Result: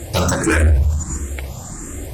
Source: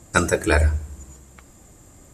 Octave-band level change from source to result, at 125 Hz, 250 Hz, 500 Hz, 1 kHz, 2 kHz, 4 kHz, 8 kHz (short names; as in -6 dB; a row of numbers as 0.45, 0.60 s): +7.0, +5.5, +1.0, +1.0, +1.5, +6.0, +7.0 dB